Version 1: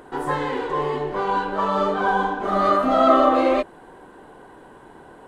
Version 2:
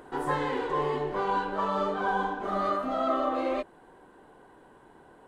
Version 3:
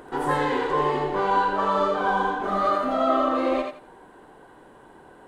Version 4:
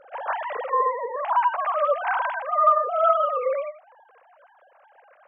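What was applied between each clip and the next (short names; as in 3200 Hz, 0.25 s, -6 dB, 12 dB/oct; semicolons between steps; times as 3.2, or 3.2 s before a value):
vocal rider within 4 dB 0.5 s; gain -8.5 dB
thinning echo 85 ms, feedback 23%, level -3.5 dB; gain +4.5 dB
sine-wave speech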